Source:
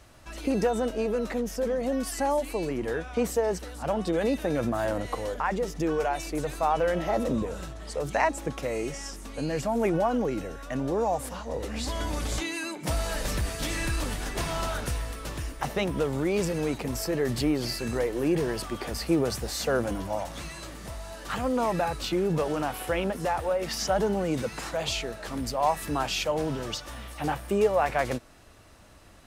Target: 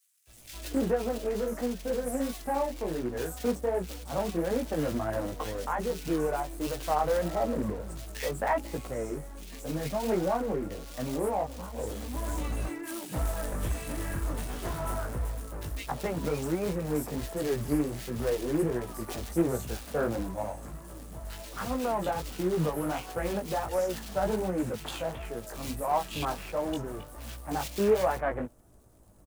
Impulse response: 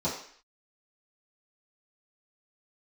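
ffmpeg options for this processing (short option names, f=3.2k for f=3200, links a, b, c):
-filter_complex "[0:a]acrossover=split=230|7300[a][b][c];[b]adynamicsmooth=sensitivity=4:basefreq=710[d];[a][d][c]amix=inputs=3:normalize=0,flanger=delay=16:depth=4.4:speed=1.4,acrusher=bits=3:mode=log:mix=0:aa=0.000001,acrossover=split=2200[e][f];[e]adelay=270[g];[g][f]amix=inputs=2:normalize=0"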